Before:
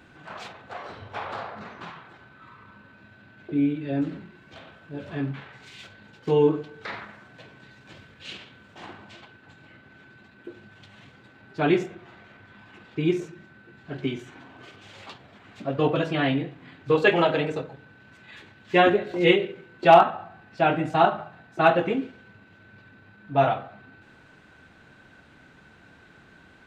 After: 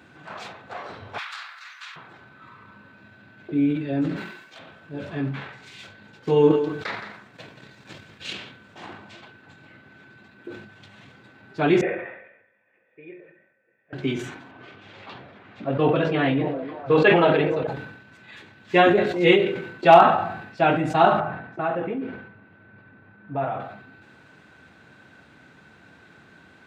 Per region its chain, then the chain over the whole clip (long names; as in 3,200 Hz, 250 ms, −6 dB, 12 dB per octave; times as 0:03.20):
0:01.18–0:01.96: high-pass filter 1,400 Hz 24 dB per octave + high-shelf EQ 3,400 Hz +11.5 dB
0:04.16–0:04.59: high-pass filter 760 Hz 6 dB per octave + high-shelf EQ 5,500 Hz +7.5 dB
0:06.33–0:08.33: high-shelf EQ 5,000 Hz +5 dB + single-tap delay 172 ms −8.5 dB + transient designer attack +5 dB, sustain −9 dB
0:11.81–0:13.93: formant resonators in series e + low-shelf EQ 470 Hz −12 dB
0:14.51–0:17.67: low-pass filter 3,500 Hz + echo through a band-pass that steps 299 ms, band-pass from 410 Hz, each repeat 0.7 octaves, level −8 dB + level that may fall only so fast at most 41 dB per second
0:21.20–0:23.60: low-pass filter 2,000 Hz + downward compressor 2 to 1, threshold −30 dBFS
whole clip: high-pass filter 85 Hz; notch filter 3,000 Hz, Q 29; level that may fall only so fast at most 66 dB per second; level +1.5 dB